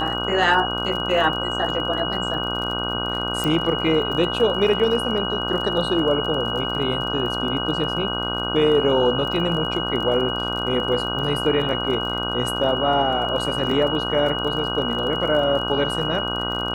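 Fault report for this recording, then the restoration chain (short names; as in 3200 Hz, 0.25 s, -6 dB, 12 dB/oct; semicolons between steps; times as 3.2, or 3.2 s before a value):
buzz 60 Hz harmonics 26 -28 dBFS
crackle 31/s -29 dBFS
tone 2900 Hz -26 dBFS
3.44 pop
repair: de-click; de-hum 60 Hz, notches 26; notch 2900 Hz, Q 30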